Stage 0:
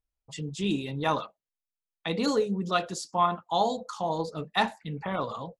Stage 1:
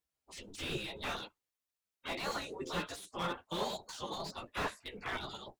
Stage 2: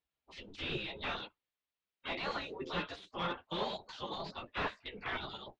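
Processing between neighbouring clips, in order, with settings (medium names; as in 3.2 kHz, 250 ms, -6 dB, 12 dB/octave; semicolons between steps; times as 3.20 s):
chorus voices 6, 0.97 Hz, delay 13 ms, depth 3 ms; spectral gate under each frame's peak -15 dB weak; slew-rate limiter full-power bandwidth 15 Hz; trim +6.5 dB
four-pole ladder low-pass 4.5 kHz, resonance 25%; trim +5.5 dB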